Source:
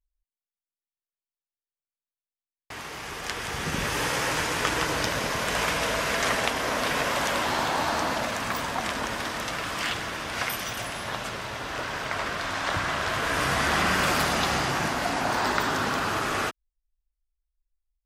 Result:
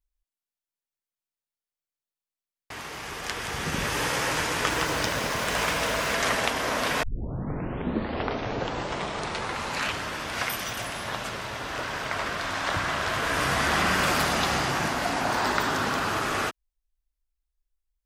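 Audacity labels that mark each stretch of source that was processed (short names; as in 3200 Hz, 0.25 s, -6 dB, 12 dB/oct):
4.700000	6.140000	sample gate under -38 dBFS
7.030000	7.030000	tape start 3.24 s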